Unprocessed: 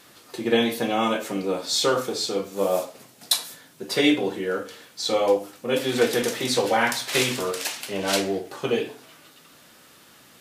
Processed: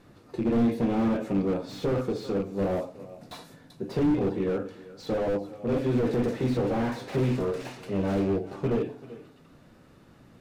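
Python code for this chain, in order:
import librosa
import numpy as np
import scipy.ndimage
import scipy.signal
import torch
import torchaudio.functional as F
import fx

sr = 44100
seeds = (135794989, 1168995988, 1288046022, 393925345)

p1 = fx.rattle_buzz(x, sr, strikes_db=-33.0, level_db=-24.0)
p2 = fx.tilt_eq(p1, sr, slope=-4.5)
p3 = fx.notch(p2, sr, hz=3200.0, q=15.0)
p4 = p3 + fx.echo_single(p3, sr, ms=389, db=-20.5, dry=0)
p5 = fx.slew_limit(p4, sr, full_power_hz=53.0)
y = p5 * 10.0 ** (-5.5 / 20.0)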